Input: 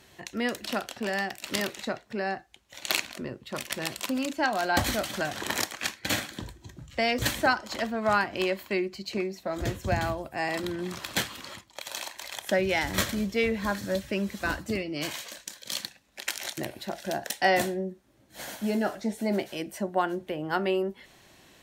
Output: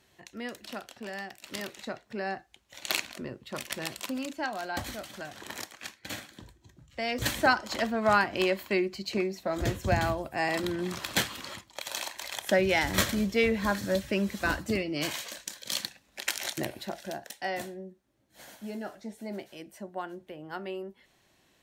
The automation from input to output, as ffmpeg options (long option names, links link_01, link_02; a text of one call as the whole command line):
ffmpeg -i in.wav -af "volume=9dB,afade=type=in:start_time=1.49:duration=0.87:silence=0.473151,afade=type=out:start_time=3.72:duration=1.15:silence=0.398107,afade=type=in:start_time=6.9:duration=0.63:silence=0.266073,afade=type=out:start_time=16.64:duration=0.63:silence=0.266073" out.wav